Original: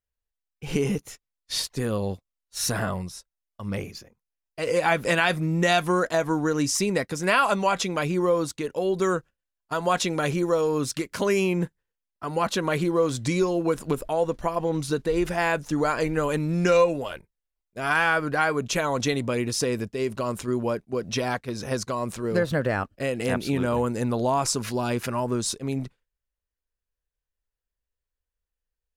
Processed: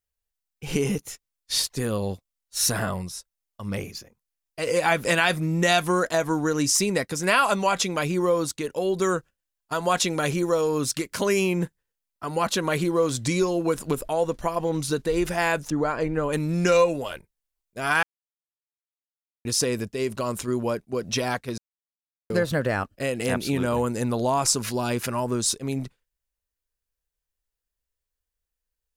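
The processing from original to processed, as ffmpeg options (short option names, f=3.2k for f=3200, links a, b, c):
-filter_complex "[0:a]asettb=1/sr,asplit=3[a][b][c];[a]atrim=end=15.704[d];[b]atrim=start=15.7:end=16.33,asetpts=PTS-STARTPTS,afade=t=in:d=0.004:c=qsin,afade=t=out:st=0.626:d=0.004:c=qsin,lowpass=f=1.3k:p=1[e];[c]atrim=start=16.326[f];[d][e]acrossfade=d=0.004:c1=hsin:c2=qsin[g];[g][f]acrossfade=d=0.004:c1=qsin:c2=hsin,asplit=5[h][i][j][k][l];[h]atrim=end=18.03,asetpts=PTS-STARTPTS,afade=t=out:st=18.026:d=0.004:c=hsin[m];[i]atrim=start=18.03:end=19.45,asetpts=PTS-STARTPTS,volume=0[n];[j]atrim=start=19.45:end=21.58,asetpts=PTS-STARTPTS,afade=t=in:d=0.004:c=hsin,afade=t=out:st=2.126:d=0.004:c=hsin[o];[k]atrim=start=21.58:end=22.3,asetpts=PTS-STARTPTS,volume=0[p];[l]atrim=start=22.3,asetpts=PTS-STARTPTS,afade=t=in:d=0.004:c=hsin[q];[m][n][o][p][q]concat=n=5:v=0:a=1,highshelf=f=4.5k:g=6.5"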